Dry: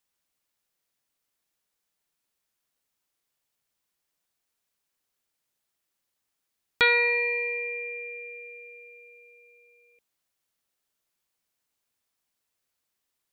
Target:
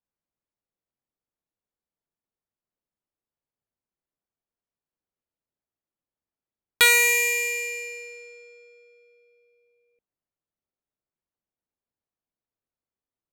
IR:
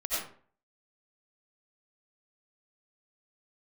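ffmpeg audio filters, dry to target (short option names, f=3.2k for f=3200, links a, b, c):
-af "adynamicsmooth=sensitivity=5.5:basefreq=780,crystalizer=i=4.5:c=0,volume=-2dB"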